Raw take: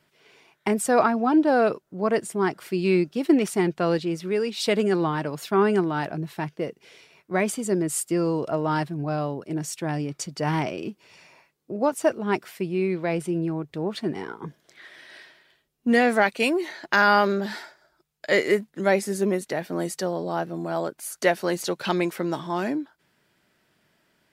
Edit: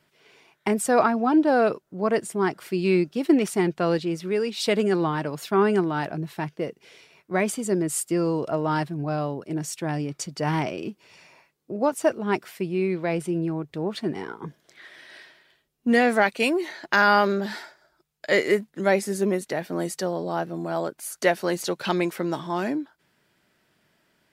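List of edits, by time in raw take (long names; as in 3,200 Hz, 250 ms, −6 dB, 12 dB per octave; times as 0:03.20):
nothing was edited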